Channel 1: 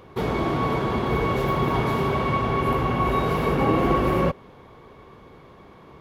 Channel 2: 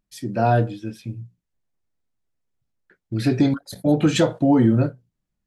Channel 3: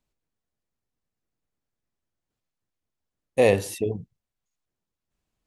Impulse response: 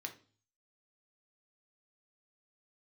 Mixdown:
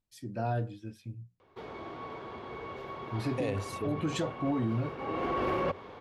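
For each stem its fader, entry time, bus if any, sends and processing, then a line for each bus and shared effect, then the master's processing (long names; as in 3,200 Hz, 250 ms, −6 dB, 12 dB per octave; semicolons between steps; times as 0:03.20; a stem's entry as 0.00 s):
+2.5 dB, 1.40 s, no send, three-way crossover with the lows and the highs turned down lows −12 dB, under 290 Hz, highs −16 dB, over 6,400 Hz; automatic ducking −19 dB, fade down 1.60 s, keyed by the second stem
−13.0 dB, 0.00 s, no send, no processing
−10.0 dB, 0.00 s, no send, low-pass filter 7,900 Hz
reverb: not used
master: parametric band 93 Hz +10 dB 0.38 octaves; brickwall limiter −22.5 dBFS, peak gain reduction 11 dB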